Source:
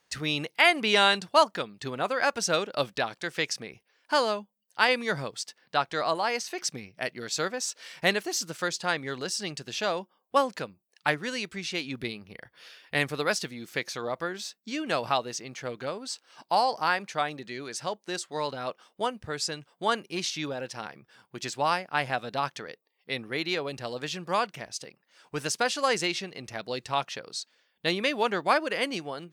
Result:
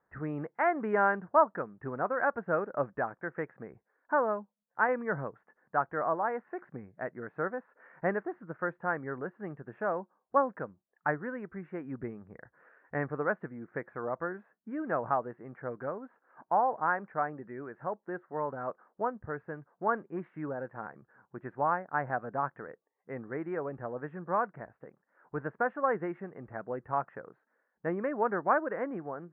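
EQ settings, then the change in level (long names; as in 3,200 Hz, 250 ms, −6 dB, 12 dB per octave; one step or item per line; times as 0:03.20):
Butterworth low-pass 1,700 Hz 48 dB per octave
−2.5 dB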